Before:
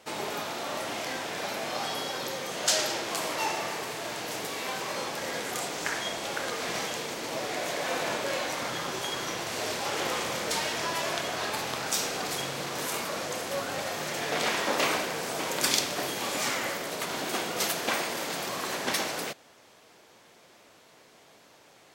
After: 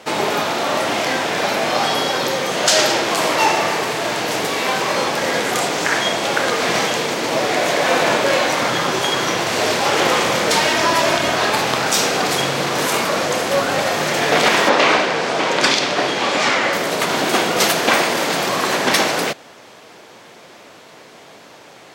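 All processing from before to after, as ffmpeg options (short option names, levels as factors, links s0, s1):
-filter_complex "[0:a]asettb=1/sr,asplit=3[s0][s1][s2];[s0]atrim=end=10.684[s3];[s1]atrim=start=10.68:end=11.33,asetpts=PTS-STARTPTS,afade=t=in:d=0.004:c=qsin,afade=t=out:st=0.646:d=0.004:c=qsin,asubboost=boost=7.5:cutoff=240,aecho=1:1:3.2:0.37,atrim=end_sample=28665[s4];[s2]atrim=start=11.326[s5];[s3][s4]acrossfade=d=0.004:c1=hsin:c2=qsin[s6];[s6][s5]acrossfade=d=0.004:c1=qsin:c2=hsin,asettb=1/sr,asplit=3[s7][s8][s9];[s7]atrim=end=14.694[s10];[s8]atrim=start=14.69:end=16.73,asetpts=PTS-STARTPTS,afade=t=in:d=0.004:c=qsin,afade=t=out:st=2.036:d=0.004:c=qsin,lowpass=5200,lowshelf=f=200:g=-6[s11];[s9]atrim=start=16.726[s12];[s10][s11]acrossfade=d=0.004:c1=hsin:c2=qsin[s13];[s13][s12]acrossfade=d=0.004:c1=qsin:c2=hsin,highpass=93,highshelf=f=6700:g=-8,alimiter=level_in=6.31:limit=0.891:release=50:level=0:latency=1,volume=0.891"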